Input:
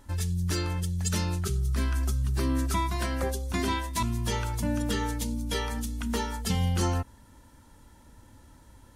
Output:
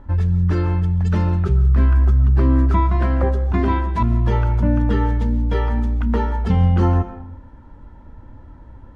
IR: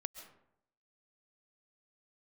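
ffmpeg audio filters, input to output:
-filter_complex "[0:a]lowpass=1.4k,asplit=2[a][b];[b]lowshelf=f=95:g=9[c];[1:a]atrim=start_sample=2205,highshelf=f=11k:g=7.5[d];[c][d]afir=irnorm=-1:irlink=0,volume=8dB[e];[a][e]amix=inputs=2:normalize=0"

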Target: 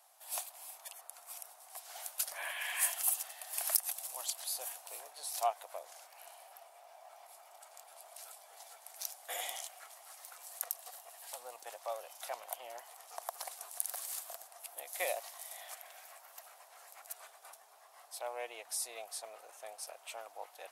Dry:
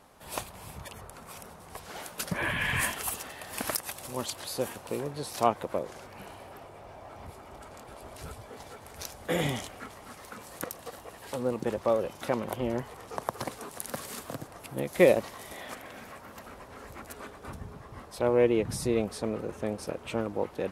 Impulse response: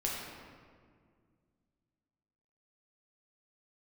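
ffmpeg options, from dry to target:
-af "highpass=f=700:t=q:w=5.8,aderivative"

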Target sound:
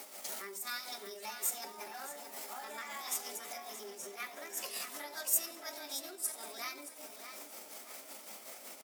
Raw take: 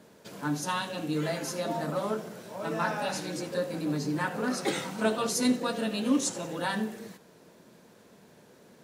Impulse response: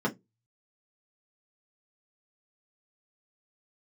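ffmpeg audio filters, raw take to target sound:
-filter_complex "[0:a]bandreject=f=50:t=h:w=6,bandreject=f=100:t=h:w=6,bandreject=f=150:t=h:w=6,bandreject=f=200:t=h:w=6,bandreject=f=250:t=h:w=6,tremolo=f=5.4:d=0.59,asetrate=58866,aresample=44100,atempo=0.749154,equalizer=f=410:w=0.35:g=9,acompressor=threshold=-44dB:ratio=6,aderivative,asplit=2[a][b];[b]adelay=623,lowpass=f=4.7k:p=1,volume=-8dB,asplit=2[c][d];[d]adelay=623,lowpass=f=4.7k:p=1,volume=0.41,asplit=2[e][f];[f]adelay=623,lowpass=f=4.7k:p=1,volume=0.41,asplit=2[g][h];[h]adelay=623,lowpass=f=4.7k:p=1,volume=0.41,asplit=2[i][j];[j]adelay=623,lowpass=f=4.7k:p=1,volume=0.41[k];[a][c][e][g][i][k]amix=inputs=6:normalize=0,asplit=2[l][m];[1:a]atrim=start_sample=2205[n];[m][n]afir=irnorm=-1:irlink=0,volume=-23.5dB[o];[l][o]amix=inputs=2:normalize=0,volume=18dB"

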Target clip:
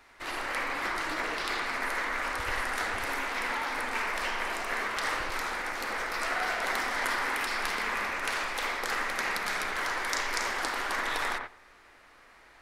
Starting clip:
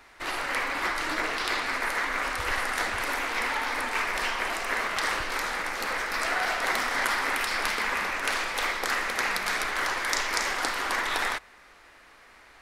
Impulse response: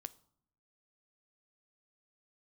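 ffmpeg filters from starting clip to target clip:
-filter_complex "[0:a]asplit=2[a][b];[1:a]atrim=start_sample=2205,lowpass=2k,adelay=90[c];[b][c]afir=irnorm=-1:irlink=0,volume=2.5dB[d];[a][d]amix=inputs=2:normalize=0,volume=-4.5dB"

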